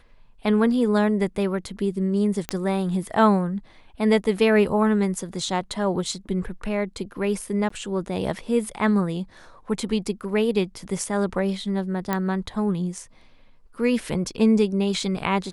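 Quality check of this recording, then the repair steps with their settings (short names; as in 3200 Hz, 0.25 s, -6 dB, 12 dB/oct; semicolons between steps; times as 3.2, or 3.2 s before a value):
2.49 pop -10 dBFS
7.69–7.7 gap 14 ms
12.13 pop -10 dBFS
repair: de-click; interpolate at 7.69, 14 ms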